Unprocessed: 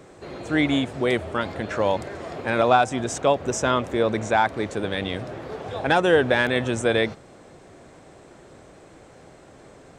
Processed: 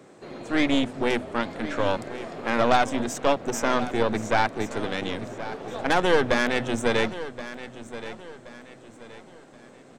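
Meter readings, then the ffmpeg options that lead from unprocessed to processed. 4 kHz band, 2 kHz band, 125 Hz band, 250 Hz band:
−1.0 dB, −2.0 dB, −5.0 dB, −1.0 dB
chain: -af "highpass=frequency=110:width=0.5412,highpass=frequency=110:width=1.3066,equalizer=frequency=240:width_type=o:width=0.36:gain=6.5,bandreject=frequency=50:width_type=h:width=6,bandreject=frequency=100:width_type=h:width=6,bandreject=frequency=150:width_type=h:width=6,bandreject=frequency=200:width_type=h:width=6,bandreject=frequency=250:width_type=h:width=6,aeval=exprs='0.562*(cos(1*acos(clip(val(0)/0.562,-1,1)))-cos(1*PI/2))+0.0891*(cos(6*acos(clip(val(0)/0.562,-1,1)))-cos(6*PI/2))':channel_layout=same,aecho=1:1:1075|2150|3225:0.2|0.0718|0.0259,volume=-3.5dB"

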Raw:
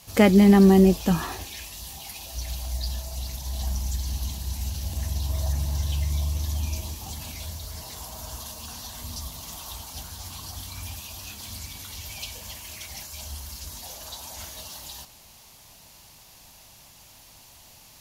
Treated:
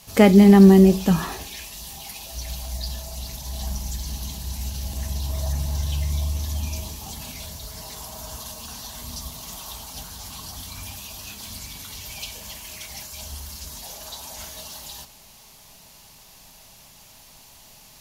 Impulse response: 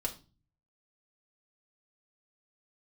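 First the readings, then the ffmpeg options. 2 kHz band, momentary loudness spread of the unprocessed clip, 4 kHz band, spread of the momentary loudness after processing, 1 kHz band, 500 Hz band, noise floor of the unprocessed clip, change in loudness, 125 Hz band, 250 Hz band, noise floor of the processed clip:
+1.5 dB, 18 LU, +2.0 dB, 20 LU, +2.5 dB, +3.5 dB, −51 dBFS, +6.0 dB, +2.5 dB, +4.0 dB, −49 dBFS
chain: -filter_complex "[0:a]asplit=2[link_01][link_02];[1:a]atrim=start_sample=2205,asetrate=37926,aresample=44100[link_03];[link_02][link_03]afir=irnorm=-1:irlink=0,volume=-12dB[link_04];[link_01][link_04]amix=inputs=2:normalize=0"

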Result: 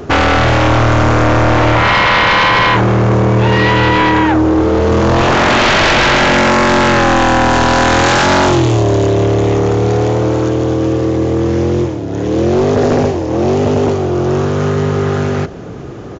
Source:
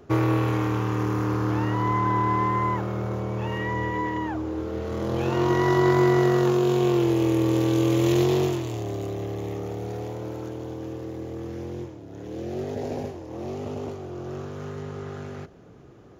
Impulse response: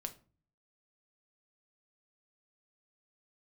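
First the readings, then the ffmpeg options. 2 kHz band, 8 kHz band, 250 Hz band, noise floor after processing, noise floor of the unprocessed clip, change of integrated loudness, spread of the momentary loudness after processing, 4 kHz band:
+22.0 dB, +18.0 dB, +11.5 dB, −24 dBFS, −46 dBFS, +14.0 dB, 6 LU, +22.0 dB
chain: -af "aeval=exprs='0.355*sin(PI/2*6.31*val(0)/0.355)':channel_layout=same,aresample=16000,aresample=44100,volume=2dB"

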